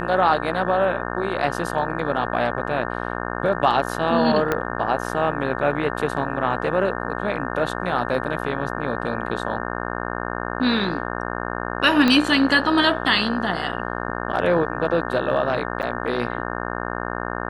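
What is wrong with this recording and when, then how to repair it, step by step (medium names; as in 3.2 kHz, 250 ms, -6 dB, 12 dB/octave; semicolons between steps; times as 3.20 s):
buzz 60 Hz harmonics 30 -28 dBFS
4.52 s: pop -8 dBFS
12.08 s: pop -6 dBFS
15.82–15.83 s: dropout 8.4 ms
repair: de-click; de-hum 60 Hz, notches 30; interpolate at 15.82 s, 8.4 ms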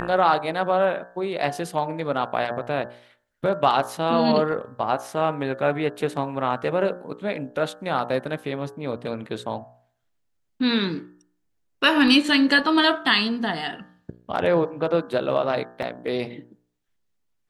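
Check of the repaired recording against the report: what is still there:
4.52 s: pop
12.08 s: pop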